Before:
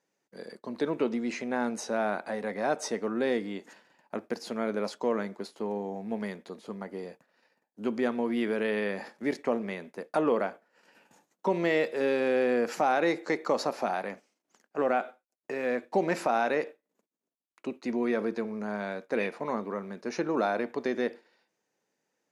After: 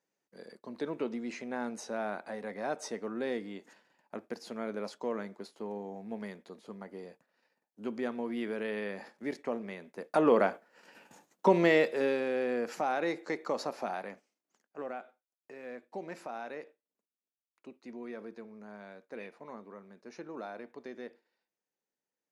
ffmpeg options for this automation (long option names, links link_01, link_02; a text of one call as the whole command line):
ffmpeg -i in.wav -af "volume=4dB,afade=type=in:start_time=9.87:duration=0.62:silence=0.298538,afade=type=out:start_time=11.47:duration=0.79:silence=0.316228,afade=type=out:start_time=13.96:duration=1.03:silence=0.375837" out.wav